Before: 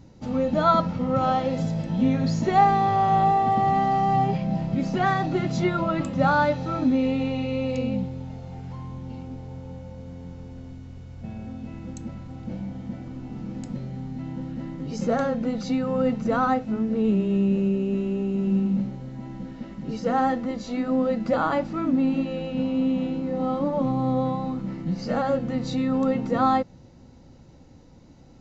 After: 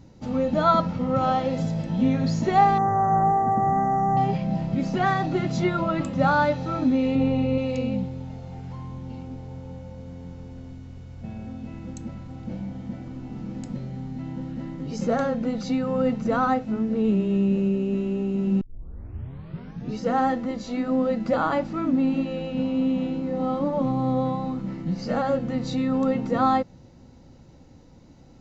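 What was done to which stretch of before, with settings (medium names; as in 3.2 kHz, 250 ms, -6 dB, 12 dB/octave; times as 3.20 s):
2.78–4.17 s: elliptic band-stop 1.8–6.1 kHz
7.15–7.58 s: tilt shelf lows +5 dB, about 1.3 kHz
18.61 s: tape start 1.37 s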